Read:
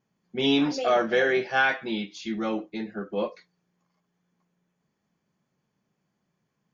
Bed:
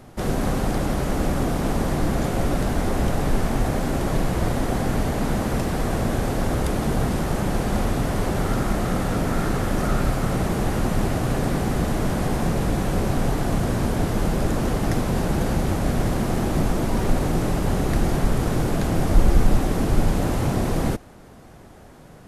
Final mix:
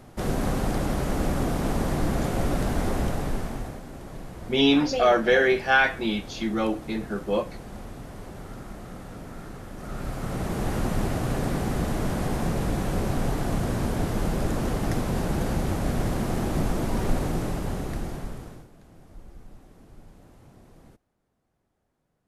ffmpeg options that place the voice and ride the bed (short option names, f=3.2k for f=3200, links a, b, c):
-filter_complex "[0:a]adelay=4150,volume=3dB[a];[1:a]volume=10dB,afade=t=out:st=2.88:d=0.94:silence=0.199526,afade=t=in:st=9.77:d=0.97:silence=0.223872,afade=t=out:st=17.13:d=1.55:silence=0.0501187[b];[a][b]amix=inputs=2:normalize=0"